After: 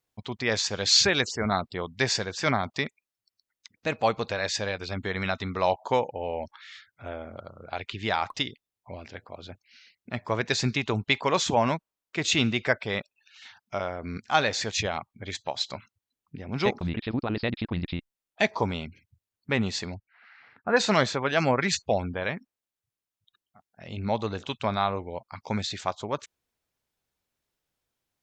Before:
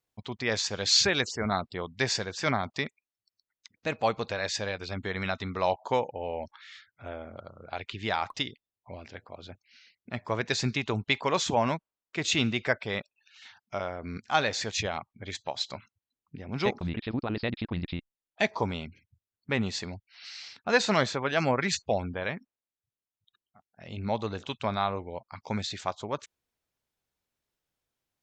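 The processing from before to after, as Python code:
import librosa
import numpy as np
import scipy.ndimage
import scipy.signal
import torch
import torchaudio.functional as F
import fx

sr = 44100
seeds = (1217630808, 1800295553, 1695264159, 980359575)

y = fx.cheby1_lowpass(x, sr, hz=1700.0, order=3, at=(19.94, 20.76), fade=0.02)
y = F.gain(torch.from_numpy(y), 2.5).numpy()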